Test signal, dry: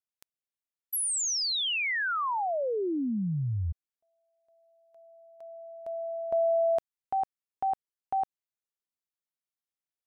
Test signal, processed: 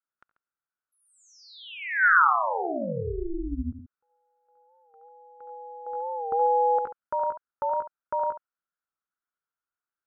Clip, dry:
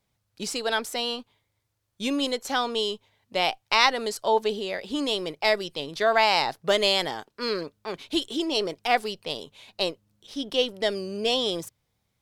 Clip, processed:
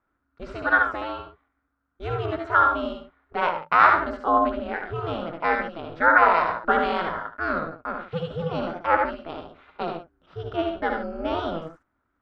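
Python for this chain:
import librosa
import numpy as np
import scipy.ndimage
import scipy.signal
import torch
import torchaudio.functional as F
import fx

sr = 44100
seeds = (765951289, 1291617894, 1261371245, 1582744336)

p1 = x + fx.echo_multitap(x, sr, ms=(69, 87, 139), db=(-5.0, -9.0, -13.0), dry=0)
p2 = p1 * np.sin(2.0 * np.pi * 170.0 * np.arange(len(p1)) / sr)
p3 = fx.lowpass_res(p2, sr, hz=1400.0, q=7.2)
y = fx.record_warp(p3, sr, rpm=45.0, depth_cents=100.0)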